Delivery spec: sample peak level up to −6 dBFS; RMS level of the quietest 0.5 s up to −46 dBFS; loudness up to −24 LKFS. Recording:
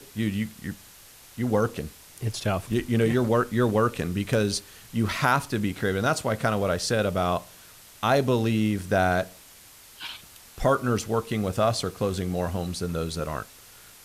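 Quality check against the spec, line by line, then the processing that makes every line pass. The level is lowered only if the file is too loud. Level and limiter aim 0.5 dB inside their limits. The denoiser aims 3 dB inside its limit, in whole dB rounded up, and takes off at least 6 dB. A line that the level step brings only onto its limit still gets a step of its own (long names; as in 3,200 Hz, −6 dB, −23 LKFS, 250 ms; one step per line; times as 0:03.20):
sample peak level −8.0 dBFS: in spec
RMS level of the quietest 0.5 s −50 dBFS: in spec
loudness −26.0 LKFS: in spec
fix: no processing needed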